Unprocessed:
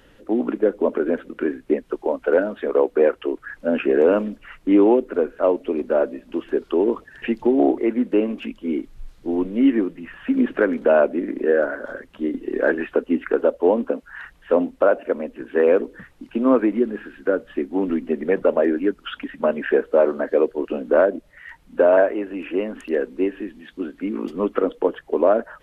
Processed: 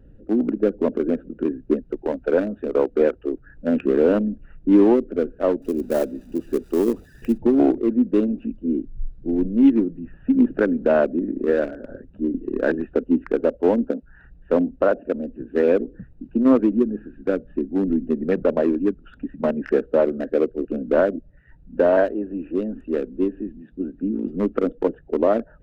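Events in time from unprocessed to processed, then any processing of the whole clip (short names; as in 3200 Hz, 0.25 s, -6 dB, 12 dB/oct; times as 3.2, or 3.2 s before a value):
5.62–7.38 switching spikes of -21.5 dBFS
20.06–20.84 bell 930 Hz -15 dB -> -7.5 dB 0.29 oct
whole clip: Wiener smoothing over 41 samples; tone controls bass +11 dB, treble +1 dB; gain -2 dB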